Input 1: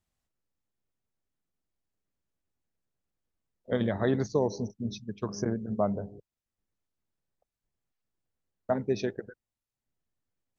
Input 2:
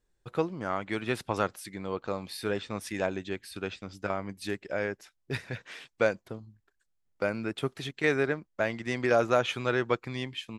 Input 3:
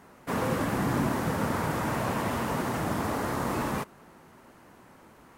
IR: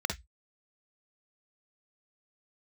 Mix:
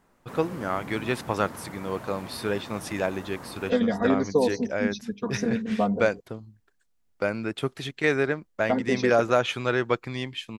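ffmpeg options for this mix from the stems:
-filter_complex "[0:a]aecho=1:1:4.2:0.98,volume=1dB,asplit=2[a][b];[1:a]volume=3dB[c];[2:a]volume=-12dB[d];[b]apad=whole_len=237056[e];[d][e]sidechaincompress=threshold=-44dB:ratio=8:attack=16:release=1070[f];[a][c][f]amix=inputs=3:normalize=0"

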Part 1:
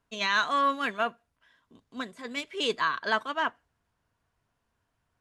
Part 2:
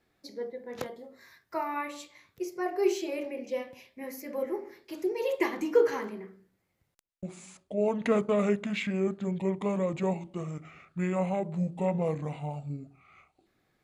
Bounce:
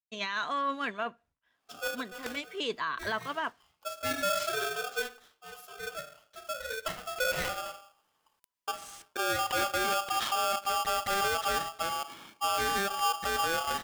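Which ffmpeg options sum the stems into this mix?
-filter_complex "[0:a]agate=range=-33dB:threshold=-56dB:ratio=3:detection=peak,highshelf=f=9k:g=-9,volume=-2.5dB,asplit=2[a][b];[1:a]dynaudnorm=f=170:g=3:m=9dB,aeval=exprs='val(0)*sgn(sin(2*PI*990*n/s))':c=same,adelay=1450,volume=3.5dB,afade=t=out:st=4.88:d=0.3:silence=0.334965,afade=t=in:st=7.07:d=0.42:silence=0.298538[c];[b]apad=whole_len=674163[d];[c][d]sidechaincompress=threshold=-42dB:ratio=16:attack=46:release=624[e];[a][e]amix=inputs=2:normalize=0,alimiter=limit=-23dB:level=0:latency=1:release=35"

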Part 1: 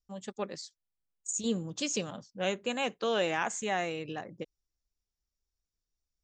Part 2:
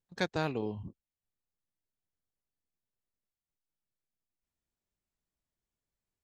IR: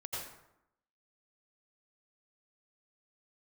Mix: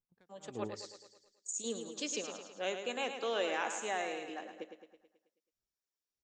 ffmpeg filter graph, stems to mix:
-filter_complex "[0:a]highpass=f=270:w=0.5412,highpass=f=270:w=1.3066,adelay=200,volume=-5dB,asplit=2[a][b];[b]volume=-8dB[c];[1:a]adynamicsmooth=sensitivity=2:basefreq=1.6k,aeval=exprs='val(0)*pow(10,-39*(0.5-0.5*cos(2*PI*1.6*n/s))/20)':c=same,volume=-5.5dB,asplit=2[d][e];[e]volume=-16.5dB[f];[2:a]atrim=start_sample=2205[g];[f][g]afir=irnorm=-1:irlink=0[h];[c]aecho=0:1:108|216|324|432|540|648|756|864:1|0.55|0.303|0.166|0.0915|0.0503|0.0277|0.0152[i];[a][d][h][i]amix=inputs=4:normalize=0"

